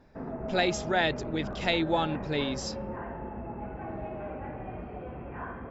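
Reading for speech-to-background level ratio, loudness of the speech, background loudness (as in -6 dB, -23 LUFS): 8.5 dB, -30.0 LUFS, -38.5 LUFS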